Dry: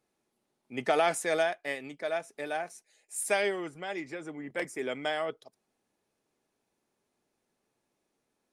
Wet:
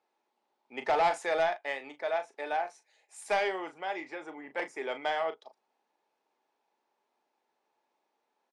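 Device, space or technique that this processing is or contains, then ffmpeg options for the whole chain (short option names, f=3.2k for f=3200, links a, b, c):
intercom: -filter_complex "[0:a]highpass=410,lowpass=4.5k,equalizer=f=880:t=o:w=0.39:g=10.5,asoftclip=type=tanh:threshold=-20.5dB,asplit=2[a][b];[b]adelay=37,volume=-10.5dB[c];[a][c]amix=inputs=2:normalize=0"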